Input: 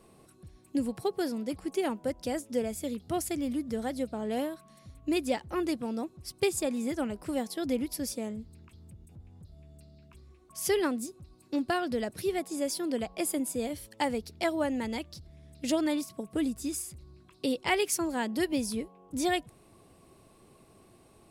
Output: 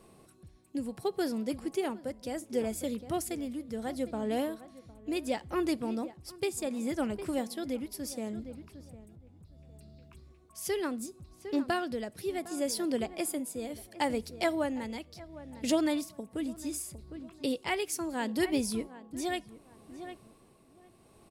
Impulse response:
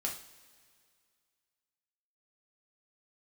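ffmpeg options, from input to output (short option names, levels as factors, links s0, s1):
-filter_complex "[0:a]asplit=2[s0][s1];[s1]adelay=757,lowpass=f=1900:p=1,volume=0.168,asplit=2[s2][s3];[s3]adelay=757,lowpass=f=1900:p=1,volume=0.27,asplit=2[s4][s5];[s5]adelay=757,lowpass=f=1900:p=1,volume=0.27[s6];[s0][s2][s4][s6]amix=inputs=4:normalize=0,tremolo=f=0.7:d=0.5,asplit=2[s7][s8];[1:a]atrim=start_sample=2205,afade=t=out:st=0.27:d=0.01,atrim=end_sample=12348[s9];[s8][s9]afir=irnorm=-1:irlink=0,volume=0.0891[s10];[s7][s10]amix=inputs=2:normalize=0"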